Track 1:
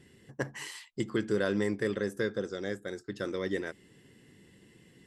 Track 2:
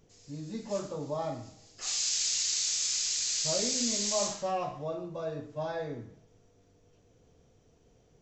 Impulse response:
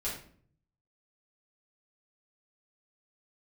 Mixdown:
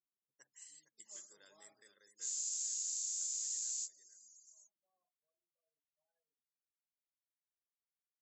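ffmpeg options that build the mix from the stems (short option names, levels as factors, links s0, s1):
-filter_complex "[0:a]volume=0.75,asplit=3[s0][s1][s2];[s1]volume=0.299[s3];[1:a]adelay=400,volume=1.19[s4];[s2]apad=whole_len=379979[s5];[s4][s5]sidechaingate=range=0.0708:threshold=0.00178:ratio=16:detection=peak[s6];[s3]aecho=0:1:459:1[s7];[s0][s6][s7]amix=inputs=3:normalize=0,afftfilt=real='re*gte(hypot(re,im),0.00501)':imag='im*gte(hypot(re,im),0.00501)':win_size=1024:overlap=0.75,bandpass=f=7300:t=q:w=5.3:csg=0,acompressor=threshold=0.0112:ratio=2.5"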